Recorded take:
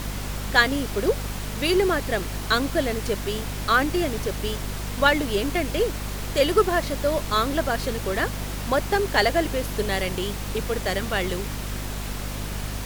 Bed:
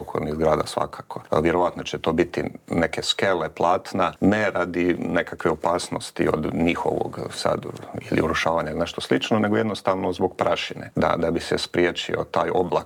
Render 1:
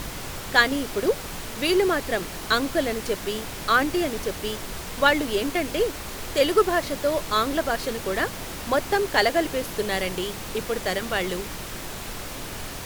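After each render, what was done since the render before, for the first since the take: notches 50/100/150/200/250 Hz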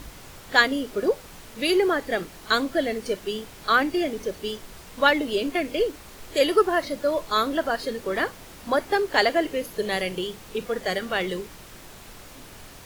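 noise print and reduce 10 dB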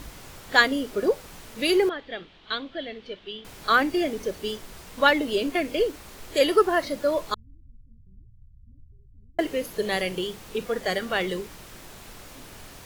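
1.89–3.45 ladder low-pass 3800 Hz, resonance 60%; 7.34–9.39 inverse Chebyshev low-pass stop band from 660 Hz, stop band 80 dB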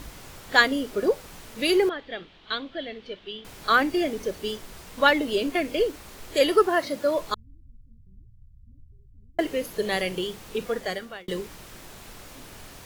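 6.67–7.18 HPF 99 Hz; 10.7–11.28 fade out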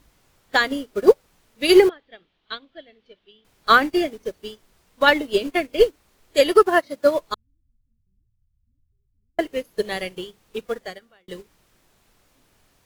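maximiser +11.5 dB; upward expander 2.5:1, over -25 dBFS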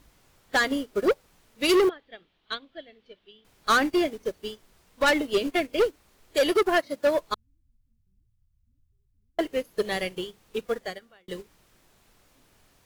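soft clip -16.5 dBFS, distortion -7 dB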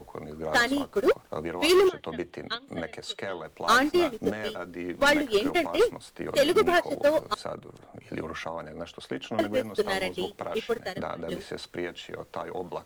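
add bed -13.5 dB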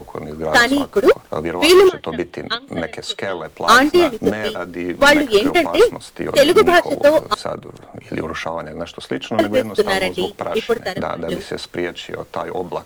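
gain +10.5 dB

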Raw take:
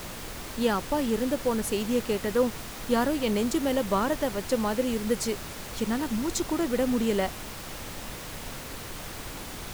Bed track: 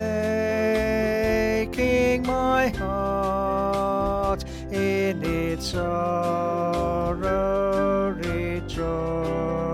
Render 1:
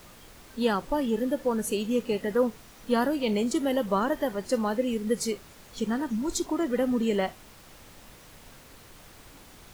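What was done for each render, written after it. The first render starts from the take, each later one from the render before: noise print and reduce 12 dB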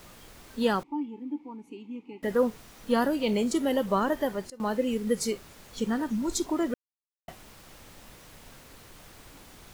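0.83–2.23 vowel filter u; 4.18–4.92 dip -21.5 dB, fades 0.32 s logarithmic; 6.74–7.28 mute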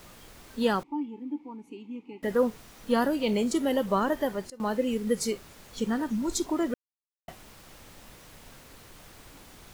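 nothing audible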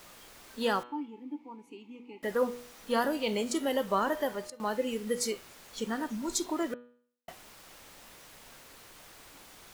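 low shelf 280 Hz -11.5 dB; de-hum 121.6 Hz, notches 35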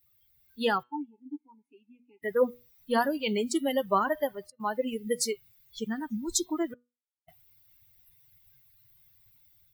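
per-bin expansion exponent 2; AGC gain up to 6 dB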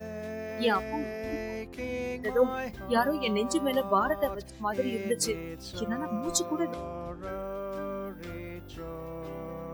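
add bed track -13.5 dB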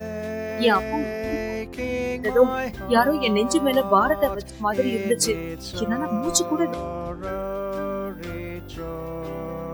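gain +7.5 dB

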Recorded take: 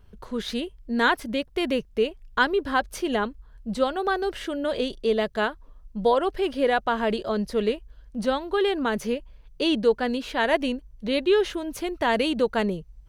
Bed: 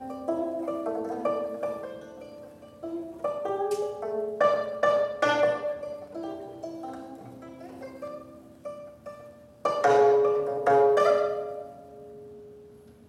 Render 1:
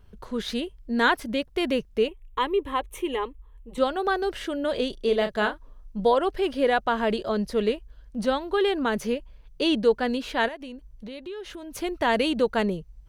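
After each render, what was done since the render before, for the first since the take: 2.08–3.78 fixed phaser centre 1000 Hz, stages 8; 4.97–6 doubler 34 ms -8 dB; 10.48–11.75 compressor 4:1, threshold -37 dBFS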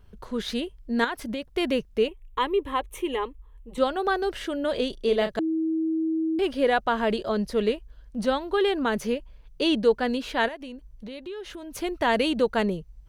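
1.04–1.52 compressor, threshold -26 dBFS; 5.39–6.39 bleep 321 Hz -22.5 dBFS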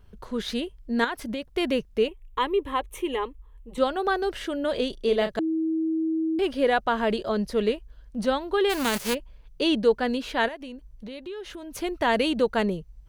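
8.69–9.13 spectral whitening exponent 0.3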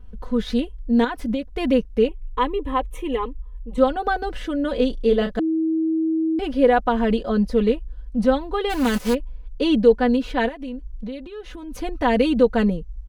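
tilt -2 dB/oct; comb 4 ms, depth 77%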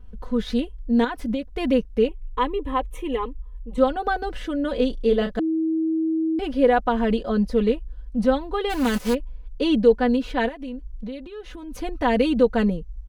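gain -1.5 dB

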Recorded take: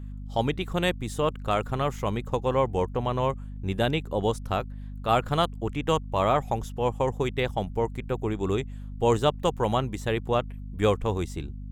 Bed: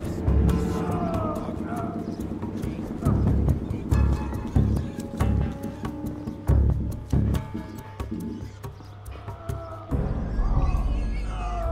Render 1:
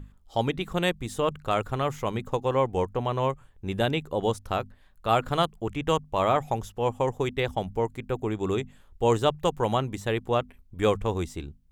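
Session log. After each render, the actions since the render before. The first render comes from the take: notches 50/100/150/200/250 Hz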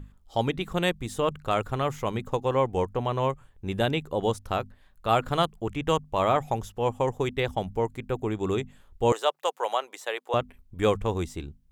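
9.12–10.34 HPF 510 Hz 24 dB/oct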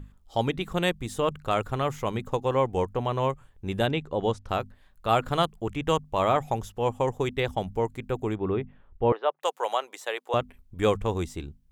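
3.87–4.49 air absorption 85 m; 8.35–9.43 Gaussian blur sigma 3.4 samples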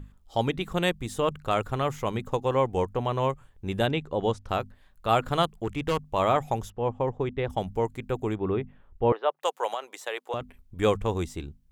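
5.49–6.08 hard clip -20.5 dBFS; 6.7–7.5 tape spacing loss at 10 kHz 29 dB; 9.73–10.41 compressor, threshold -26 dBFS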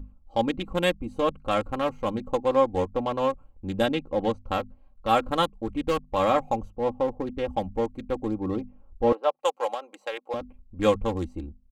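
Wiener smoothing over 25 samples; comb 3.7 ms, depth 77%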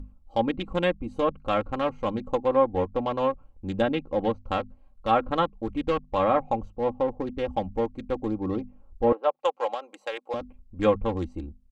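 treble ducked by the level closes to 2000 Hz, closed at -18.5 dBFS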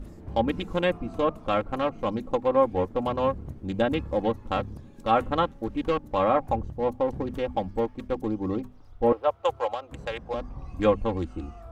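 add bed -16.5 dB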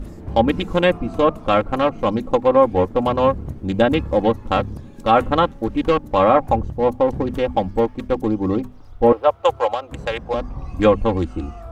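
gain +8.5 dB; limiter -3 dBFS, peak gain reduction 2.5 dB

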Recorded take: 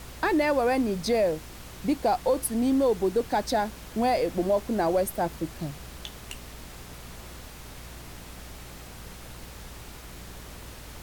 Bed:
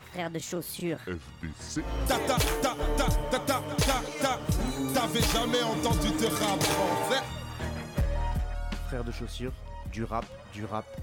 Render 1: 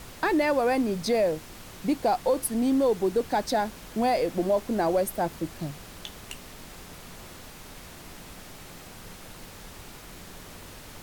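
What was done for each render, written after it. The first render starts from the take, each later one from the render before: de-hum 60 Hz, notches 2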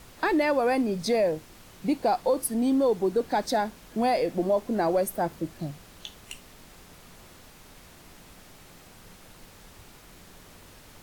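noise print and reduce 6 dB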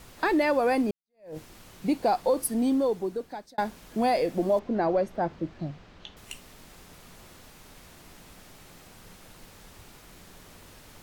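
0.91–1.37 fade in exponential; 2.62–3.58 fade out; 4.59–6.17 air absorption 180 m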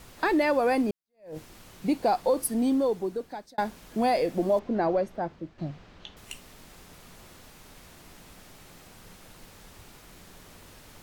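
4.87–5.58 fade out, to -9 dB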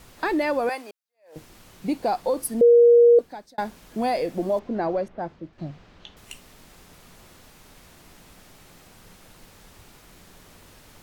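0.69–1.36 HPF 780 Hz; 2.61–3.19 bleep 474 Hz -10 dBFS; 5.08–5.53 low-pass opened by the level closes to 2200 Hz, open at -27.5 dBFS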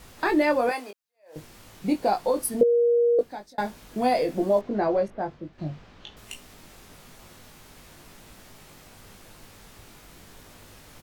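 doubler 20 ms -5 dB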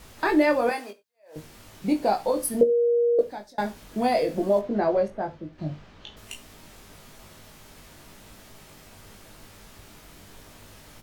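non-linear reverb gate 0.12 s falling, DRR 10 dB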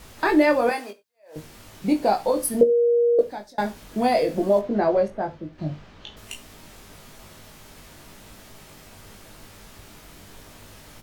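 gain +2.5 dB

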